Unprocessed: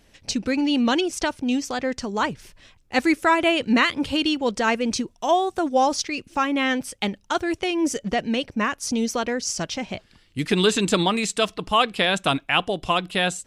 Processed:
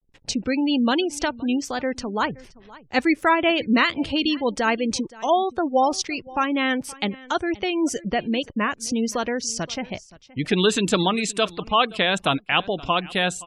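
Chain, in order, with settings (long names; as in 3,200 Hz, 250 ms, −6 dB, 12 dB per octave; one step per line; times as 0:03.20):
slack as between gear wheels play −43.5 dBFS
single-tap delay 522 ms −21 dB
gate on every frequency bin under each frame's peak −30 dB strong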